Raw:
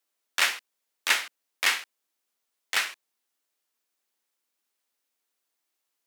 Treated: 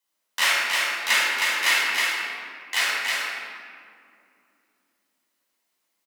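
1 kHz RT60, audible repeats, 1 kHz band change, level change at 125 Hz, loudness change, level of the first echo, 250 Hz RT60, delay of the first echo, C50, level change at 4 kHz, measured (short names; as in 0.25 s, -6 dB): 2.2 s, 1, +7.5 dB, n/a, +5.0 dB, -3.0 dB, 4.0 s, 0.316 s, -4.5 dB, +6.0 dB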